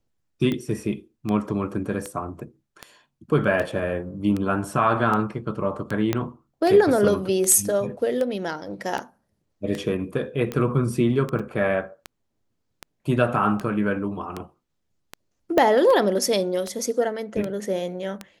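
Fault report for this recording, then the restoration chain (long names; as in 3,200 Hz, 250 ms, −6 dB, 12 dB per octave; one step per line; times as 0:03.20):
scratch tick 78 rpm −15 dBFS
0:06.13: click −8 dBFS
0:11.39–0:11.40: drop-out 6 ms
0:15.58: click −7 dBFS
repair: click removal
repair the gap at 0:11.39, 6 ms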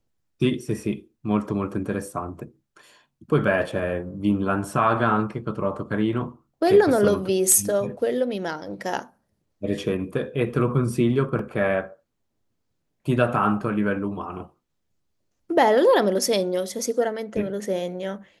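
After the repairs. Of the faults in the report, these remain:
0:06.13: click
0:15.58: click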